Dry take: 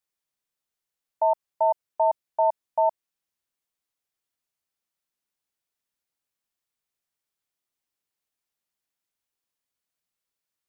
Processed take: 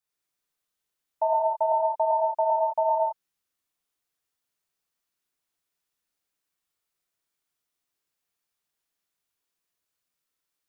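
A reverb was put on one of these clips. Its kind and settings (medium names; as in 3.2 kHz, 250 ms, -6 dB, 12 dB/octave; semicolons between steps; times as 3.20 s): gated-style reverb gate 240 ms flat, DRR -5 dB; trim -3 dB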